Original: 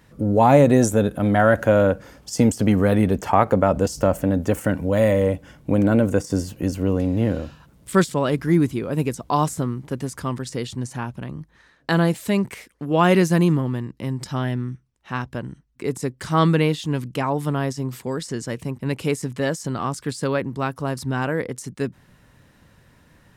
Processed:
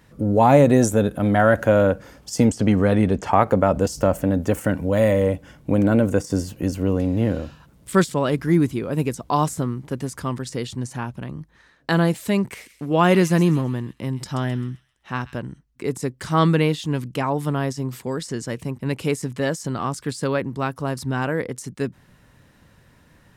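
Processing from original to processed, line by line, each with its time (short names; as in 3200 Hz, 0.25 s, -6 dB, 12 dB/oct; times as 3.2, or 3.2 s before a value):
2.45–3.32 LPF 8100 Hz
12.39–15.42 thin delay 0.131 s, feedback 37%, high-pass 2700 Hz, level -10.5 dB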